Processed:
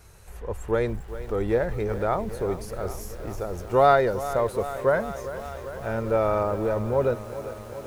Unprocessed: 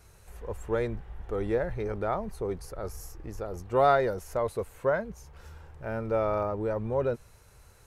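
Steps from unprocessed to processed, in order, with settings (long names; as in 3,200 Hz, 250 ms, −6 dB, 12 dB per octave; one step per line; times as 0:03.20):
feedback echo at a low word length 397 ms, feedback 80%, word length 8 bits, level −13.5 dB
level +4.5 dB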